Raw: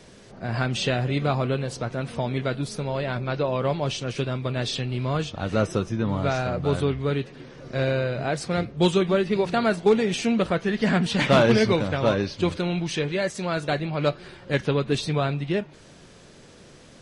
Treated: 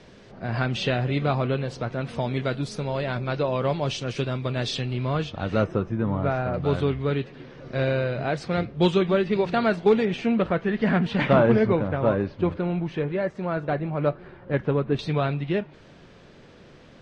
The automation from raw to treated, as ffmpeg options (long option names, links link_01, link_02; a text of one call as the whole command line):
ffmpeg -i in.wav -af "asetnsamples=nb_out_samples=441:pad=0,asendcmd='2.09 lowpass f 6900;4.93 lowpass f 4100;5.64 lowpass f 1800;6.54 lowpass f 4000;10.05 lowpass f 2400;11.33 lowpass f 1500;14.99 lowpass f 3400',lowpass=4200" out.wav